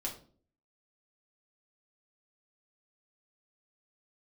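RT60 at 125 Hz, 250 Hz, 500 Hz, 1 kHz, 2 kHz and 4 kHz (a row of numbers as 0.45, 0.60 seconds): 0.65, 0.65, 0.55, 0.40, 0.30, 0.35 seconds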